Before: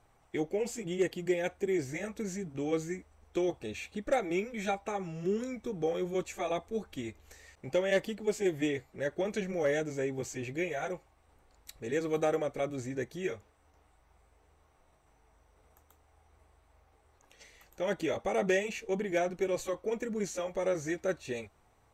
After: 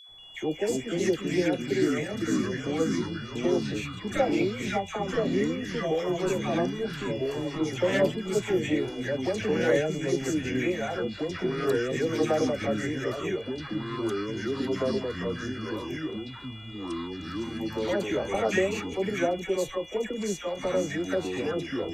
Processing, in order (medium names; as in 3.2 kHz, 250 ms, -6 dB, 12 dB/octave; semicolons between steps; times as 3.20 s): phase dispersion lows, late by 91 ms, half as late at 1.2 kHz; whistle 3.4 kHz -51 dBFS; ever faster or slower copies 184 ms, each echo -3 st, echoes 3; trim +3.5 dB